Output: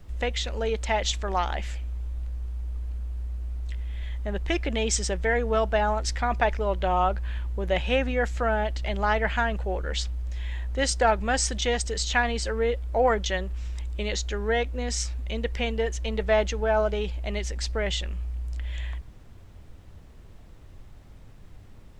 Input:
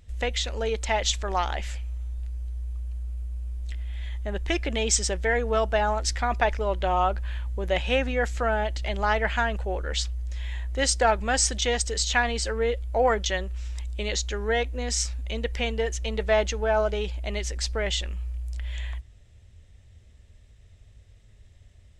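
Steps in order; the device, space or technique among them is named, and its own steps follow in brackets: car interior (bell 160 Hz +4 dB 0.87 oct; high shelf 4600 Hz -5.5 dB; brown noise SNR 20 dB)

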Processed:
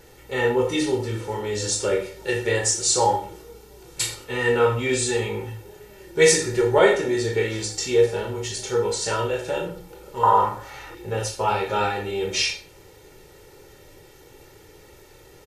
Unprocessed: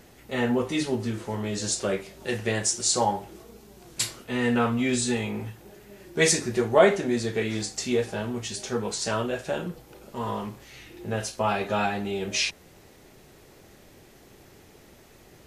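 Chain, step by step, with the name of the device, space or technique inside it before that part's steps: microphone above a desk (comb 2.2 ms, depth 71%; reverb RT60 0.45 s, pre-delay 20 ms, DRR 3.5 dB); 10.23–10.95 band shelf 980 Hz +13.5 dB

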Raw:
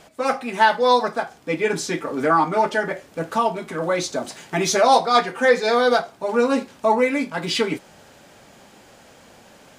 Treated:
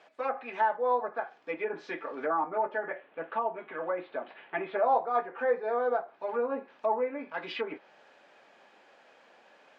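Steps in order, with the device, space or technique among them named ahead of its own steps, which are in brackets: 2.83–4.77 steep low-pass 3300 Hz 36 dB/oct; treble ducked by the level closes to 1000 Hz, closed at -16.5 dBFS; tin-can telephone (BPF 450–3100 Hz; small resonant body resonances 1700/2500 Hz, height 7 dB); gain -8 dB

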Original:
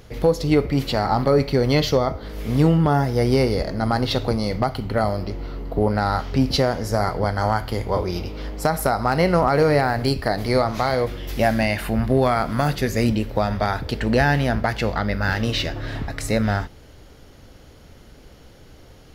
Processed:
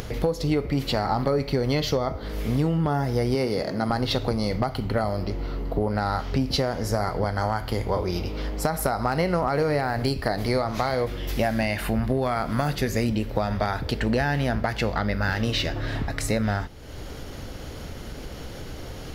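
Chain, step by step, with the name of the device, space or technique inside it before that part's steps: 3.35–3.9 HPF 140 Hz 12 dB/oct; upward and downward compression (upward compressor, threshold -25 dBFS; compressor 5:1, threshold -20 dBFS, peak gain reduction 8 dB)

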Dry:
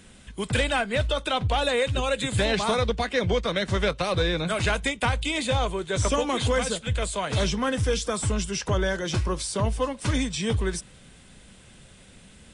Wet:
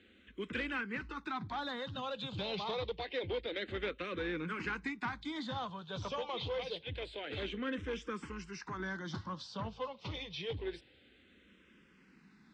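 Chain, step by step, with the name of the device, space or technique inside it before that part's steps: 8.24–8.8 bell 250 Hz -7.5 dB 1.5 oct; barber-pole phaser into a guitar amplifier (endless phaser -0.27 Hz; soft clip -21 dBFS, distortion -17 dB; speaker cabinet 110–4300 Hz, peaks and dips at 120 Hz -7 dB, 310 Hz +4 dB, 640 Hz -8 dB); gain -7.5 dB

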